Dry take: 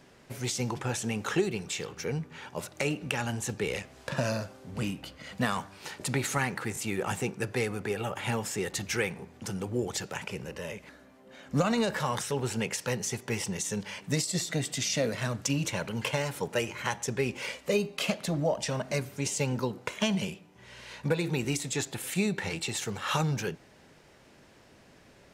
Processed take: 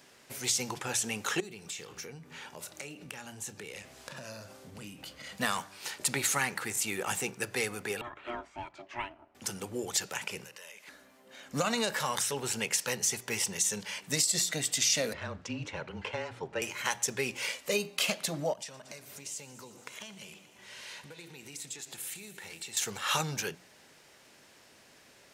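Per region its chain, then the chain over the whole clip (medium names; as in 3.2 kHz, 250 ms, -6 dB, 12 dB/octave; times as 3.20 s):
1.40–5.36 s: compression 4:1, threshold -42 dBFS + bass shelf 470 Hz +5 dB + doubling 29 ms -14 dB
8.01–9.35 s: low-pass 1.7 kHz + ring modulator 480 Hz + upward expansion, over -46 dBFS
10.44–10.88 s: high-pass 1 kHz 6 dB/octave + compression 5:1, threshold -46 dBFS
15.13–16.62 s: frequency shift -25 Hz + tape spacing loss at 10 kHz 31 dB
18.53–22.77 s: compression, threshold -42 dBFS + multi-head delay 116 ms, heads first and second, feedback 70%, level -19 dB
whole clip: tilt EQ +2.5 dB/octave; hum notches 60/120/180 Hz; trim -1.5 dB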